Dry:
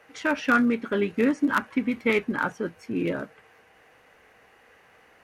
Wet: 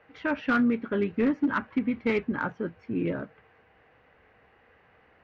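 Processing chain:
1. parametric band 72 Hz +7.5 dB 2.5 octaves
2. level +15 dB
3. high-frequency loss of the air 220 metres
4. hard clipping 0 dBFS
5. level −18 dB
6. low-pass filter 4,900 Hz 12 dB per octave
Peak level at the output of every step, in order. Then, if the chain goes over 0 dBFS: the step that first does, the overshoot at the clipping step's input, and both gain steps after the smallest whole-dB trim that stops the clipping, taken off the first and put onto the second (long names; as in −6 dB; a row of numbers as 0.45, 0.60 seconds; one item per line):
−8.5, +6.5, +5.5, 0.0, −18.0, −17.5 dBFS
step 2, 5.5 dB
step 2 +9 dB, step 5 −12 dB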